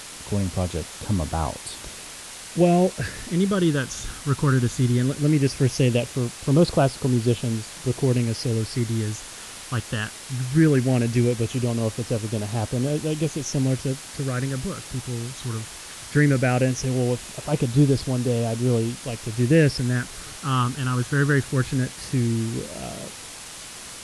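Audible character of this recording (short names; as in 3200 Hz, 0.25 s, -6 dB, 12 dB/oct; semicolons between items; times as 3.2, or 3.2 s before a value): phasing stages 8, 0.18 Hz, lowest notch 650–2000 Hz; a quantiser's noise floor 6-bit, dither triangular; AAC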